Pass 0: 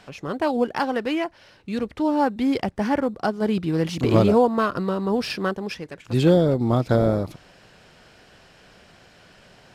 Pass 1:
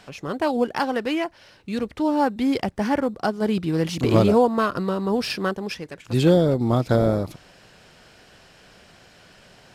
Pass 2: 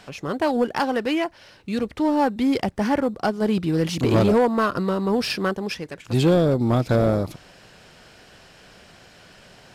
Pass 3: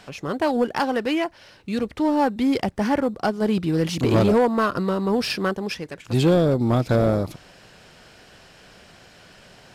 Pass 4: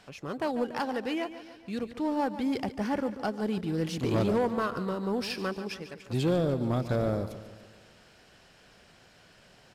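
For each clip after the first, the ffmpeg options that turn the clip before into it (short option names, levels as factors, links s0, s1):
-af "highshelf=f=4900:g=4.5"
-af "asoftclip=type=tanh:threshold=0.224,volume=1.26"
-af anull
-af "aecho=1:1:144|288|432|576|720|864:0.224|0.121|0.0653|0.0353|0.019|0.0103,volume=0.355"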